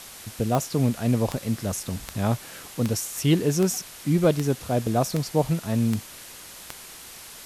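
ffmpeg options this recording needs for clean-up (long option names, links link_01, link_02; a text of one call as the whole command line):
ffmpeg -i in.wav -af "adeclick=threshold=4,afwtdn=0.0089" out.wav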